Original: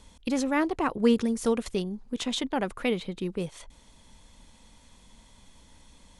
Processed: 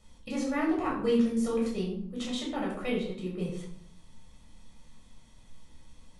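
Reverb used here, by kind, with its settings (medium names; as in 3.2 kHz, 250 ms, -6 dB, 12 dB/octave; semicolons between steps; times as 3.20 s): simulated room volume 960 m³, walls furnished, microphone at 6.4 m; trim -12 dB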